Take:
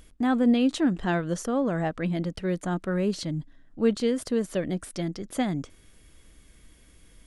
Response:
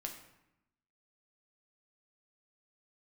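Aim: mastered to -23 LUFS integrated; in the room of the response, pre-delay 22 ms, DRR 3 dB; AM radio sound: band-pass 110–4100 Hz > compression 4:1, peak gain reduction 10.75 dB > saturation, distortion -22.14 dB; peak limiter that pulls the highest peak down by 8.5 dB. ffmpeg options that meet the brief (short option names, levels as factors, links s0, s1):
-filter_complex "[0:a]alimiter=limit=0.106:level=0:latency=1,asplit=2[s0][s1];[1:a]atrim=start_sample=2205,adelay=22[s2];[s1][s2]afir=irnorm=-1:irlink=0,volume=0.841[s3];[s0][s3]amix=inputs=2:normalize=0,highpass=110,lowpass=4100,acompressor=threshold=0.0251:ratio=4,asoftclip=threshold=0.0501,volume=4.73"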